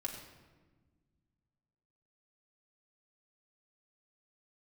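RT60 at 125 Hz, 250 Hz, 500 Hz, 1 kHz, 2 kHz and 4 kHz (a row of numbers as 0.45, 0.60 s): 2.7, 2.4, 1.5, 1.2, 1.1, 0.85 s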